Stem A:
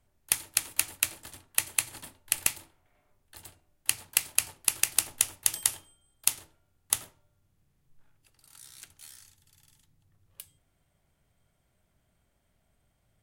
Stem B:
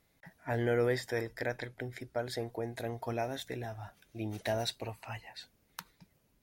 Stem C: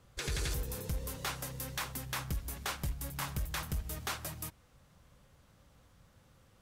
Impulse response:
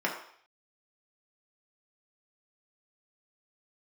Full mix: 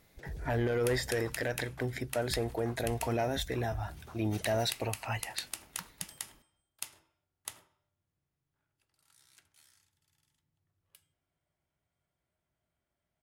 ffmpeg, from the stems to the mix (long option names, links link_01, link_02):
-filter_complex "[0:a]highpass=53,highshelf=frequency=8100:gain=-6.5,adelay=550,volume=-13dB,asplit=2[link_01][link_02];[link_02]volume=-15dB[link_03];[1:a]volume=3dB[link_04];[2:a]lowshelf=frequency=340:gain=5,afwtdn=0.0158,volume=-14dB[link_05];[link_04][link_05]amix=inputs=2:normalize=0,aeval=exprs='0.178*(cos(1*acos(clip(val(0)/0.178,-1,1)))-cos(1*PI/2))+0.0224*(cos(5*acos(clip(val(0)/0.178,-1,1)))-cos(5*PI/2))':channel_layout=same,alimiter=limit=-23.5dB:level=0:latency=1:release=45,volume=0dB[link_06];[3:a]atrim=start_sample=2205[link_07];[link_03][link_07]afir=irnorm=-1:irlink=0[link_08];[link_01][link_06][link_08]amix=inputs=3:normalize=0"